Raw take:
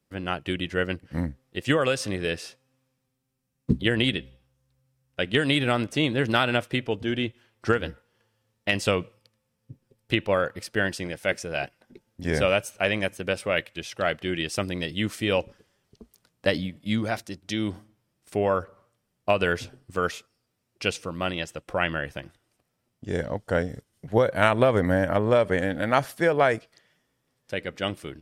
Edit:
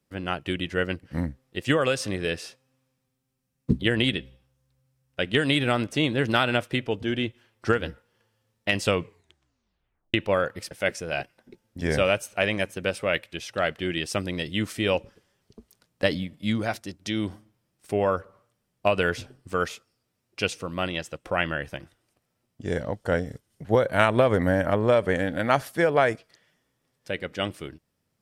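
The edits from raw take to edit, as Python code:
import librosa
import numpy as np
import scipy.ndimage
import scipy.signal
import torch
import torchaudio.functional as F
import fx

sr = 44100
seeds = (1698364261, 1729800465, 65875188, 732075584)

y = fx.edit(x, sr, fx.tape_stop(start_s=8.97, length_s=1.17),
    fx.cut(start_s=10.71, length_s=0.43), tone=tone)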